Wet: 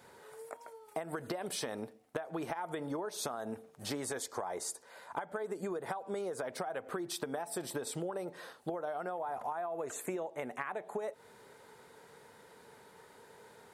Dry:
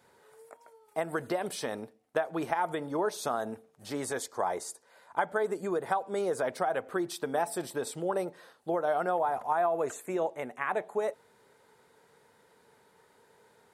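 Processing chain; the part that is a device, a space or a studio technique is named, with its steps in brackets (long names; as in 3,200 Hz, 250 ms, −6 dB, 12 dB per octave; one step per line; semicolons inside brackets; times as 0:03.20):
serial compression, leveller first (downward compressor 3 to 1, threshold −32 dBFS, peak gain reduction 7.5 dB; downward compressor 10 to 1, threshold −40 dBFS, peak gain reduction 12.5 dB)
level +5.5 dB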